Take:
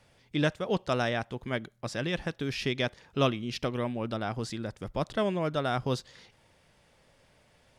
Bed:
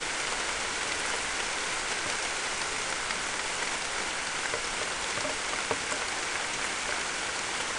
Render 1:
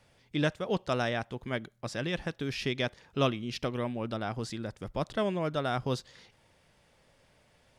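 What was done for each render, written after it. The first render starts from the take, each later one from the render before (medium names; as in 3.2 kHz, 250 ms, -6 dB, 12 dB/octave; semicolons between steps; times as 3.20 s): trim -1.5 dB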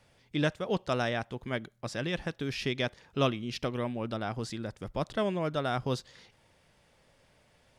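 no audible change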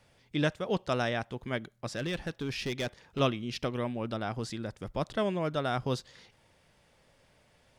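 1.87–3.20 s: hard clipper -28 dBFS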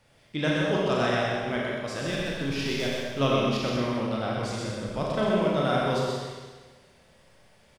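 delay 126 ms -3 dB; Schroeder reverb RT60 1.4 s, combs from 29 ms, DRR -2.5 dB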